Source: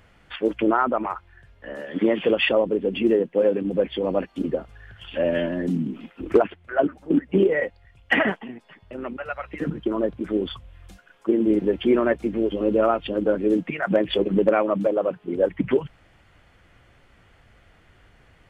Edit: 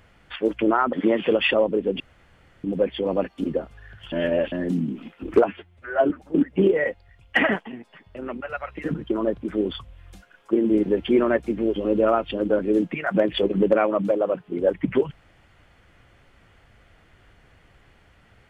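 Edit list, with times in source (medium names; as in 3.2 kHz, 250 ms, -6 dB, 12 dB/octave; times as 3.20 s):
0.93–1.91 s: delete
2.98–3.62 s: room tone
5.10–5.50 s: reverse
6.42–6.86 s: stretch 1.5×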